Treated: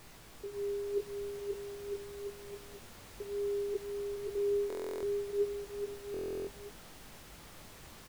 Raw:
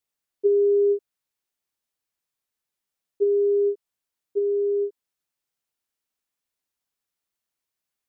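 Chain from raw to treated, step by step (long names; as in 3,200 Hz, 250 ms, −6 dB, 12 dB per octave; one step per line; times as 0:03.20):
compressor whose output falls as the input rises −32 dBFS, ratio −1
background noise pink −51 dBFS
chorus effect 0.57 Hz, delay 17.5 ms, depth 5.4 ms
bouncing-ball delay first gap 530 ms, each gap 0.8×, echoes 5
buffer that repeats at 0:04.68/0:06.12, samples 1,024, times 14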